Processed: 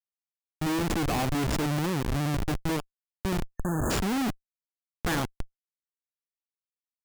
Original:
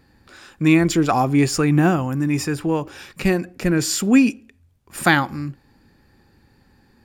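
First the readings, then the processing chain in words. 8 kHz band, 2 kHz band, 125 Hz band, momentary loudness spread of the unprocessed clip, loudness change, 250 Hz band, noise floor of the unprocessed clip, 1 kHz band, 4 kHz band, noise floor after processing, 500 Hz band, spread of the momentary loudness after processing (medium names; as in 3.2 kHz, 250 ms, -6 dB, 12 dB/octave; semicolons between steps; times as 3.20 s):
-10.5 dB, -12.0 dB, -8.5 dB, 10 LU, -10.5 dB, -12.0 dB, -58 dBFS, -9.5 dB, -7.0 dB, under -85 dBFS, -10.0 dB, 9 LU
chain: vibrato 11 Hz 9.8 cents; Schmitt trigger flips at -19 dBFS; spectral selection erased 3.48–3.91 s, 1.8–6.3 kHz; trim -6 dB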